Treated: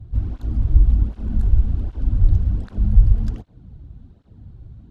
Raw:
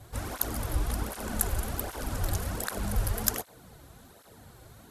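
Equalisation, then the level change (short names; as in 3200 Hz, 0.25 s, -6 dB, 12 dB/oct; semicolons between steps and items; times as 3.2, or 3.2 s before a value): RIAA curve playback; tape spacing loss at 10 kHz 22 dB; band shelf 940 Hz -10 dB 2.7 oct; 0.0 dB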